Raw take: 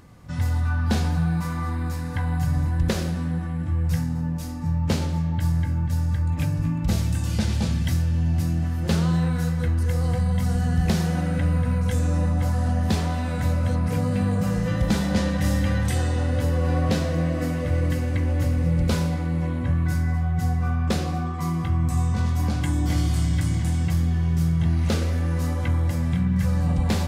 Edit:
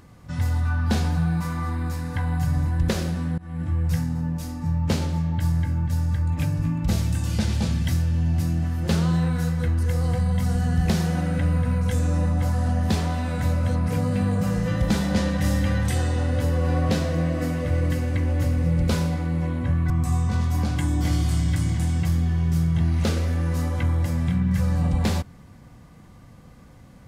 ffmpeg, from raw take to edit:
ffmpeg -i in.wav -filter_complex "[0:a]asplit=3[link_01][link_02][link_03];[link_01]atrim=end=3.38,asetpts=PTS-STARTPTS,afade=type=out:start_time=3.376:duration=0.004:curve=hsin:silence=0.0668344[link_04];[link_02]atrim=start=3.38:end=19.902,asetpts=PTS-STARTPTS,afade=type=in:duration=0.25:silence=0.0668344[link_05];[link_03]atrim=start=21.748[link_06];[link_04][link_05]concat=n=2:v=0:a=1[link_07];[link_07][link_06]acrossfade=duration=0.004:curve1=hsin:curve2=hsin" out.wav

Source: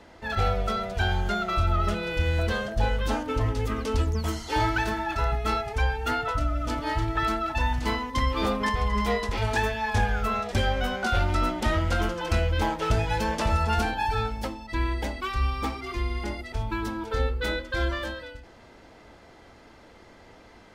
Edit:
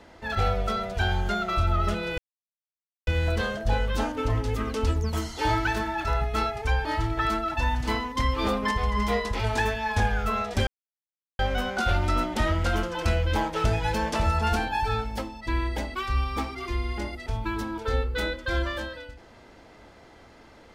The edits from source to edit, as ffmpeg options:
ffmpeg -i in.wav -filter_complex "[0:a]asplit=4[link_01][link_02][link_03][link_04];[link_01]atrim=end=2.18,asetpts=PTS-STARTPTS,afade=type=out:start_time=2.176:duration=0.004:curve=hsin,apad=pad_dur=0.89[link_05];[link_02]atrim=start=2.18:end=5.962,asetpts=PTS-STARTPTS,afade=type=in:duration=0.004:curve=hsin[link_06];[link_03]atrim=start=6.828:end=10.65,asetpts=PTS-STARTPTS,afade=type=out:start_time=3.818:duration=0.004:curve=hsin,apad=pad_dur=0.72[link_07];[link_04]atrim=start=10.65,asetpts=PTS-STARTPTS,afade=type=in:duration=0.004:curve=hsin[link_08];[link_05][link_06]concat=n=2:v=0:a=1[link_09];[link_07][link_08]concat=n=2:v=0:a=1[link_10];[link_09][link_10]acrossfade=duration=0.004:curve1=hsin:curve2=hsin" out.wav

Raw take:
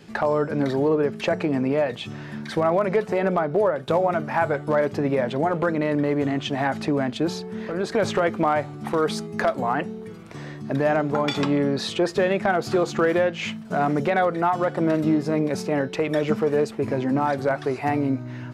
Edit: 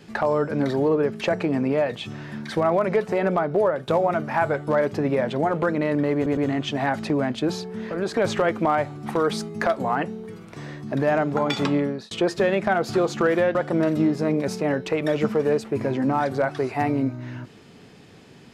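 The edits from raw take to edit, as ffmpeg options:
ffmpeg -i in.wav -filter_complex "[0:a]asplit=5[link_01][link_02][link_03][link_04][link_05];[link_01]atrim=end=6.262[link_06];[link_02]atrim=start=6.148:end=6.262[link_07];[link_03]atrim=start=6.148:end=11.89,asetpts=PTS-STARTPTS,afade=type=out:start_time=5.392:duration=0.35[link_08];[link_04]atrim=start=11.89:end=13.332,asetpts=PTS-STARTPTS,afade=type=in:duration=0.004:curve=hsin[link_09];[link_05]atrim=start=14.618[link_10];[link_06][link_07]acrossfade=duration=0.004:curve1=hsin:curve2=hsin[link_11];[link_08][link_09]concat=n=2:v=0:a=1[link_12];[link_11][link_12]acrossfade=duration=0.004:curve1=hsin:curve2=hsin[link_13];[link_13][link_10]acrossfade=duration=0.004:curve1=hsin:curve2=hsin" out.wav

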